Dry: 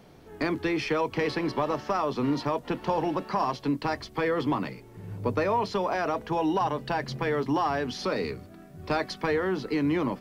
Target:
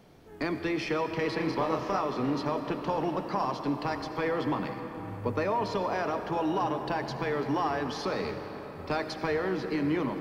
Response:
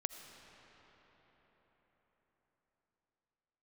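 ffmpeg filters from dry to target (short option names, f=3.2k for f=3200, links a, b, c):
-filter_complex "[0:a]asettb=1/sr,asplit=3[a][b][c];[a]atrim=end=1.374[d];[b]atrim=start=1.37:end=1.99,asetpts=PTS-STARTPTS,afade=t=in:d=0.004:c=qsin,afade=t=out:st=0.616:d=0.004:c=qsin,asplit=2[e][f];[f]adelay=31,volume=-3dB[g];[e][g]amix=inputs=2:normalize=0,atrim=end_sample=27342[h];[c]atrim=start=1.986[i];[d][h]acrossfade=d=0.004:c1=hsin:c2=qsin[j];[j][i]acrossfade=d=0.004:c1=qsin:c2=hsin[k];[1:a]atrim=start_sample=2205[l];[k][l]afir=irnorm=-1:irlink=0,volume=-2dB"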